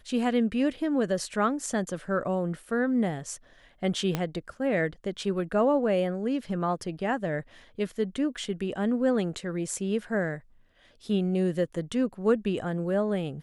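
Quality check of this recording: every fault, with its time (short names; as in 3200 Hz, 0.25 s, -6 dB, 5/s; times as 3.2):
4.15 pop -13 dBFS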